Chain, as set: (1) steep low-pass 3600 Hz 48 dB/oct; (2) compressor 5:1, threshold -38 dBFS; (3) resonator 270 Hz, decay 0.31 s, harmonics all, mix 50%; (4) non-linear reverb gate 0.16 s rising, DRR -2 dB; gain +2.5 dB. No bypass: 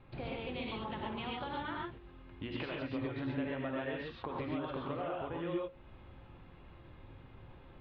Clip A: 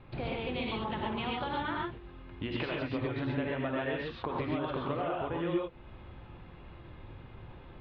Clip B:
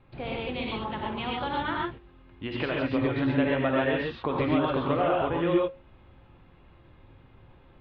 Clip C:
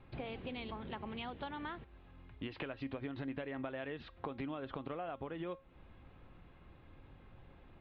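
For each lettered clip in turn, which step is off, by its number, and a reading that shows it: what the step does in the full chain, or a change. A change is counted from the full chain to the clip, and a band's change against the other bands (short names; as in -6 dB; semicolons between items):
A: 3, loudness change +5.0 LU; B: 2, mean gain reduction 6.5 dB; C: 4, crest factor change +3.0 dB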